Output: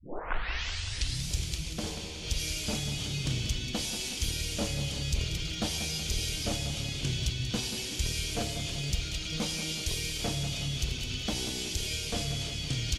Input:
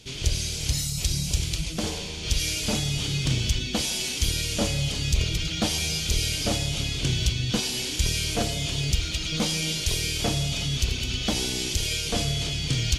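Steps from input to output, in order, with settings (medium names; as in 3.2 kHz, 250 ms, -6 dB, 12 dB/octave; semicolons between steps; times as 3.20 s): tape start-up on the opening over 1.31 s; feedback delay 186 ms, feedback 56%, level -10 dB; trim -7 dB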